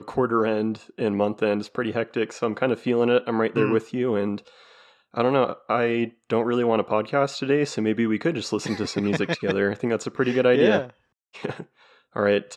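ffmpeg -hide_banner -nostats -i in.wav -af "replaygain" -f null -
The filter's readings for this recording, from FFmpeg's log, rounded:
track_gain = +4.1 dB
track_peak = 0.339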